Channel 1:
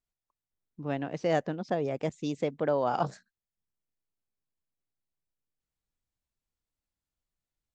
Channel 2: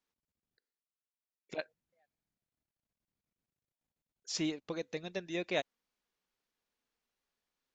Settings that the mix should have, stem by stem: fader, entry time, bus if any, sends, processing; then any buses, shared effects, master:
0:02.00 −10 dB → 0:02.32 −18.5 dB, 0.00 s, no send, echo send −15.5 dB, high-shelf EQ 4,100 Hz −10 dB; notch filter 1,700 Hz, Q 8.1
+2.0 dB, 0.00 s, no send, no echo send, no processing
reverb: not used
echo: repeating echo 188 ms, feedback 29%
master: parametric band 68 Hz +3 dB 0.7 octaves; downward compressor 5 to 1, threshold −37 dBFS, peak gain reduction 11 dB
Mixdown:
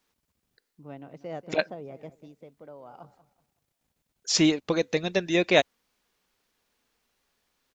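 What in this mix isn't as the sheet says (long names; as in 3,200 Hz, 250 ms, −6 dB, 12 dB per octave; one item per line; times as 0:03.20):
stem 2 +2.0 dB → +13.5 dB
master: missing downward compressor 5 to 1, threshold −37 dBFS, peak gain reduction 11 dB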